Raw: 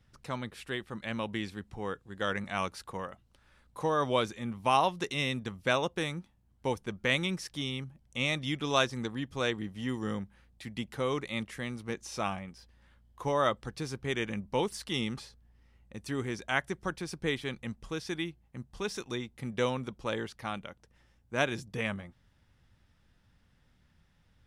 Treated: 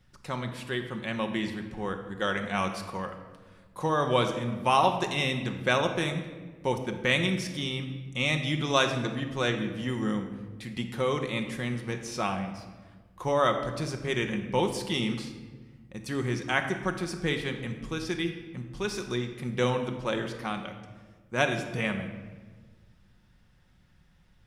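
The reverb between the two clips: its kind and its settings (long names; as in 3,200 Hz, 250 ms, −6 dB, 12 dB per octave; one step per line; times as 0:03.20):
rectangular room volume 1,200 cubic metres, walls mixed, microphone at 0.98 metres
level +2.5 dB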